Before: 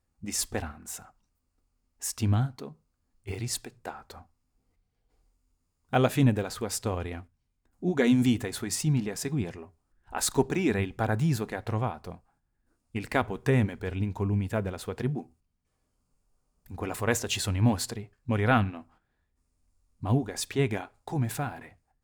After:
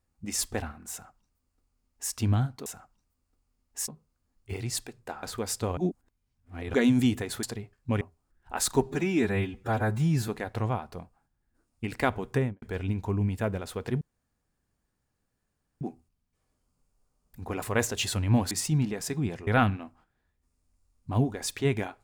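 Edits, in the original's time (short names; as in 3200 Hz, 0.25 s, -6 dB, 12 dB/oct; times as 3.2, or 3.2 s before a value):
0.91–2.13 copy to 2.66
4.01–6.46 cut
7–7.97 reverse
8.66–9.62 swap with 17.83–18.41
10.42–11.4 stretch 1.5×
13.41–13.74 studio fade out
15.13 insert room tone 1.80 s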